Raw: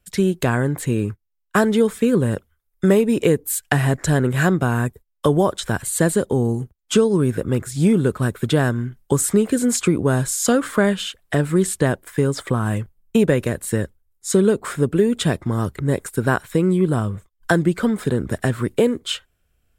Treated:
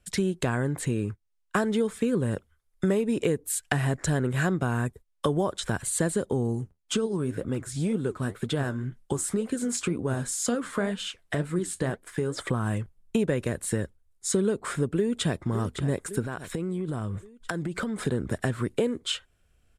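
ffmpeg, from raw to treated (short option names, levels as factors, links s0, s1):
-filter_complex "[0:a]asplit=3[s0][s1][s2];[s0]afade=t=out:st=6.6:d=0.02[s3];[s1]flanger=delay=3.8:depth=8.6:regen=61:speed=2:shape=sinusoidal,afade=t=in:st=6.6:d=0.02,afade=t=out:st=12.37:d=0.02[s4];[s2]afade=t=in:st=12.37:d=0.02[s5];[s3][s4][s5]amix=inputs=3:normalize=0,asplit=2[s6][s7];[s7]afade=t=in:st=14.96:d=0.01,afade=t=out:st=15.44:d=0.01,aecho=0:1:560|1120|1680|2240:0.211349|0.095107|0.0427982|0.0192592[s8];[s6][s8]amix=inputs=2:normalize=0,asettb=1/sr,asplit=3[s9][s10][s11];[s9]atrim=end=16.244[s12];[s10]atrim=start=16.24:end=18.07,asetpts=PTS-STARTPTS,afade=t=in:d=0.004:c=qsin,afade=t=out:st=1.826:d=0.004:c=qsin,acompressor=threshold=0.0631:ratio=12:attack=3.2:release=140:knee=1:detection=peak[s13];[s11]atrim=start=18.066[s14];[s12][s13]acrossfade=d=0.004:c1=hsin:c2=qsin[s15];[s15][s14]acrossfade=d=0.004:c1=qsin:c2=hsin,lowpass=f=11000:w=0.5412,lowpass=f=11000:w=1.3066,acompressor=threshold=0.0282:ratio=2,volume=1.12"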